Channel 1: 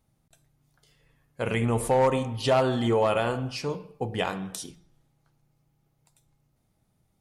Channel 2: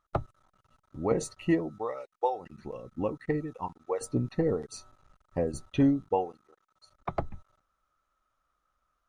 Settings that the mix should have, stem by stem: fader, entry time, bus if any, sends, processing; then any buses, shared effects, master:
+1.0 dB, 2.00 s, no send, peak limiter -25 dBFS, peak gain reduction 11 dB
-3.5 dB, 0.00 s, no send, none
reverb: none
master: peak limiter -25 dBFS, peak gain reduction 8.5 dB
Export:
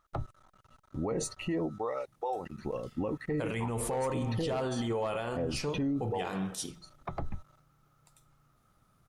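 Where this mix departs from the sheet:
stem 1: missing peak limiter -25 dBFS, peak gain reduction 11 dB; stem 2 -3.5 dB -> +5.0 dB

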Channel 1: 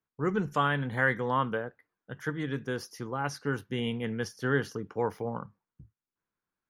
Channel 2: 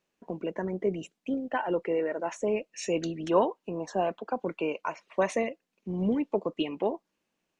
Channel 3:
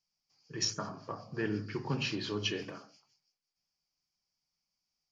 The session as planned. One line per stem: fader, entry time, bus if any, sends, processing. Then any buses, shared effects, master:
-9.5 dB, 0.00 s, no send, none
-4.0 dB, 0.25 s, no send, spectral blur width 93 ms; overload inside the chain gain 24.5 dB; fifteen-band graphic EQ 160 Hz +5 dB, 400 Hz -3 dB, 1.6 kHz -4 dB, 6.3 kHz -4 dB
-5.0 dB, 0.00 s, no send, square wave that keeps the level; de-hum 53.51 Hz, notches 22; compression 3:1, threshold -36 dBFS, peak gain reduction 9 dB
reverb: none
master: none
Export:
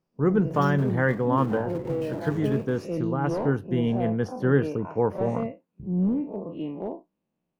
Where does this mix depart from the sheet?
stem 1 -9.5 dB -> 0.0 dB; stem 2: entry 0.25 s -> 0.00 s; master: extra tilt shelf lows +8.5 dB, about 1.3 kHz

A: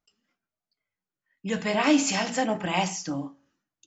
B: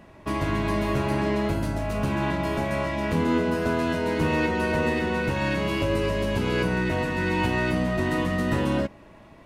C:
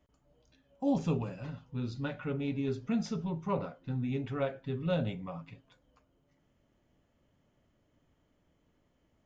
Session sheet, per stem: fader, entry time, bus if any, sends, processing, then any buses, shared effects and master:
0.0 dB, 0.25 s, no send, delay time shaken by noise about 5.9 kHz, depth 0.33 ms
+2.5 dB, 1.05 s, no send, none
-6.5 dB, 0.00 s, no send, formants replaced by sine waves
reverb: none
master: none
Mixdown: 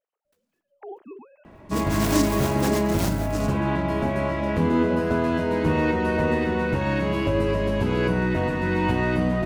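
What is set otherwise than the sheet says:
stem B: entry 1.05 s -> 1.45 s; master: extra treble shelf 2.4 kHz -9 dB

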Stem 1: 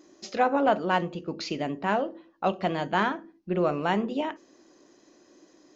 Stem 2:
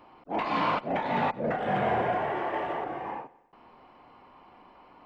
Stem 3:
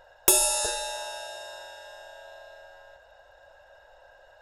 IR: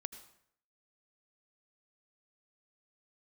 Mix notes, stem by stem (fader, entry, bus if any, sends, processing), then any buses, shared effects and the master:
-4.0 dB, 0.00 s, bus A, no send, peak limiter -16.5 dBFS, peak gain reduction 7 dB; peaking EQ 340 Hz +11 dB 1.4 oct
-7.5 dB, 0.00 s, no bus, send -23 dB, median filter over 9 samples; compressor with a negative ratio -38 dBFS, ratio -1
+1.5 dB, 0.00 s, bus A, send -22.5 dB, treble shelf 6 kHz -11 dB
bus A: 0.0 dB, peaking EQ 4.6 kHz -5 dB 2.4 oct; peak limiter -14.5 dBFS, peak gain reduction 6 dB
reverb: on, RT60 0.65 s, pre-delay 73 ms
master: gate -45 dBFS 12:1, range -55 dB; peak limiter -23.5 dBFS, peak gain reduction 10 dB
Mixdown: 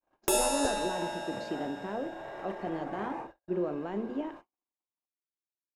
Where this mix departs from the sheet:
stem 1 -4.0 dB -> -13.0 dB; master: missing peak limiter -23.5 dBFS, peak gain reduction 10 dB

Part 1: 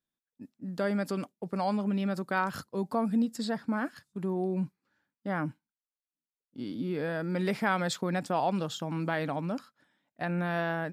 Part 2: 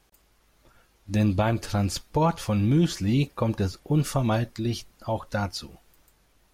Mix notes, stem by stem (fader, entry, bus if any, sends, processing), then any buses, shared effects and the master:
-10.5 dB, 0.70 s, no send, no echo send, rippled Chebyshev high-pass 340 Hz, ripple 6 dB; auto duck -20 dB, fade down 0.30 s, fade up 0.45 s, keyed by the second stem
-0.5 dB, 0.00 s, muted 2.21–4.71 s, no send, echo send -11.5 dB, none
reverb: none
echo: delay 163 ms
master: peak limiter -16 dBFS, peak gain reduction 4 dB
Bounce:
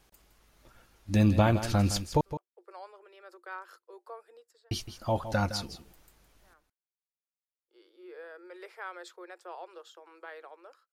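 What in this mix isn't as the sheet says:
stem 1: entry 0.70 s -> 1.15 s; master: missing peak limiter -16 dBFS, peak gain reduction 4 dB

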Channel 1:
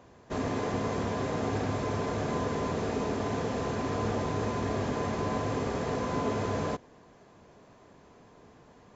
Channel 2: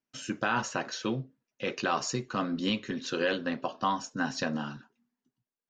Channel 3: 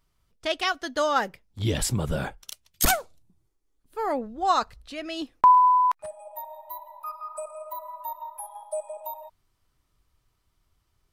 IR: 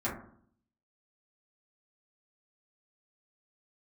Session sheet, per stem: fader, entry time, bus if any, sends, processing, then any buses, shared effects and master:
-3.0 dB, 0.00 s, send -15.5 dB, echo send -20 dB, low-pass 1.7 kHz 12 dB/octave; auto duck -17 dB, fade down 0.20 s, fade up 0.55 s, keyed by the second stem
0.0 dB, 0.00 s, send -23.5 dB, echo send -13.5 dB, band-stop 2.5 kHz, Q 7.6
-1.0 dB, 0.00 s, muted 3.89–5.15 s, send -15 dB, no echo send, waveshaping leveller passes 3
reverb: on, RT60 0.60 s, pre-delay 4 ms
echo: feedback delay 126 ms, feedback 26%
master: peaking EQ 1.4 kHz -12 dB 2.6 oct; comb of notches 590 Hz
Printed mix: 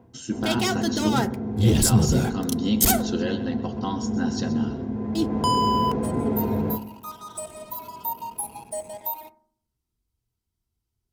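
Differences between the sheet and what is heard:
stem 1 -3.0 dB -> +7.5 dB; stem 2 0.0 dB -> +7.0 dB

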